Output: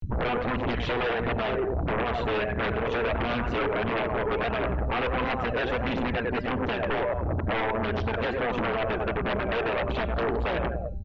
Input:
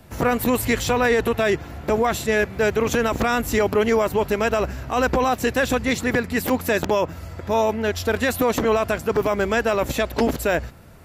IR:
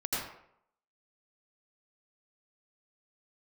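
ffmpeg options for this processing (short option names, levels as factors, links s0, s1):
-filter_complex "[0:a]asplit=2[s0][s1];[s1]adelay=95,lowpass=f=2400:p=1,volume=0.355,asplit=2[s2][s3];[s3]adelay=95,lowpass=f=2400:p=1,volume=0.43,asplit=2[s4][s5];[s5]adelay=95,lowpass=f=2400:p=1,volume=0.43,asplit=2[s6][s7];[s7]adelay=95,lowpass=f=2400:p=1,volume=0.43,asplit=2[s8][s9];[s9]adelay=95,lowpass=f=2400:p=1,volume=0.43[s10];[s2][s4][s6][s8][s10]amix=inputs=5:normalize=0[s11];[s0][s11]amix=inputs=2:normalize=0,afftfilt=real='re*gte(hypot(re,im),0.0355)':imag='im*gte(hypot(re,im),0.0355)':win_size=1024:overlap=0.75,adynamicequalizer=threshold=0.0178:dfrequency=590:dqfactor=6.5:tfrequency=590:tqfactor=6.5:attack=5:release=100:ratio=0.375:range=2:mode=boostabove:tftype=bell,acompressor=threshold=0.0316:ratio=4,tremolo=f=120:d=0.857,acompressor=mode=upward:threshold=0.0112:ratio=2.5,equalizer=f=2000:t=o:w=0.37:g=-5.5,bandreject=f=198.4:t=h:w=4,bandreject=f=396.8:t=h:w=4,bandreject=f=595.2:t=h:w=4,bandreject=f=793.6:t=h:w=4,bandreject=f=992:t=h:w=4,bandreject=f=1190.4:t=h:w=4,bandreject=f=1388.8:t=h:w=4,bandreject=f=1587.2:t=h:w=4,bandreject=f=1785.6:t=h:w=4,bandreject=f=1984:t=h:w=4,bandreject=f=2182.4:t=h:w=4,bandreject=f=2380.8:t=h:w=4,bandreject=f=2579.2:t=h:w=4,bandreject=f=2777.6:t=h:w=4,bandreject=f=2976:t=h:w=4,bandreject=f=3174.4:t=h:w=4,bandreject=f=3372.8:t=h:w=4,bandreject=f=3571.2:t=h:w=4,bandreject=f=3769.6:t=h:w=4,bandreject=f=3968:t=h:w=4,bandreject=f=4166.4:t=h:w=4,bandreject=f=4364.8:t=h:w=4,bandreject=f=4563.2:t=h:w=4,bandreject=f=4761.6:t=h:w=4,bandreject=f=4960:t=h:w=4,bandreject=f=5158.4:t=h:w=4,bandreject=f=5356.8:t=h:w=4,bandreject=f=5555.2:t=h:w=4,bandreject=f=5753.6:t=h:w=4,bandreject=f=5952:t=h:w=4,bandreject=f=6150.4:t=h:w=4,bandreject=f=6348.8:t=h:w=4,bandreject=f=6547.2:t=h:w=4,aphaser=in_gain=1:out_gain=1:delay=2.7:decay=0.49:speed=1.5:type=triangular,aeval=exprs='0.126*sin(PI/2*5.62*val(0)/0.126)':c=same,lowpass=f=3200:w=0.5412,lowpass=f=3200:w=1.3066,volume=0.562" -ar 16000 -c:a mp2 -b:a 128k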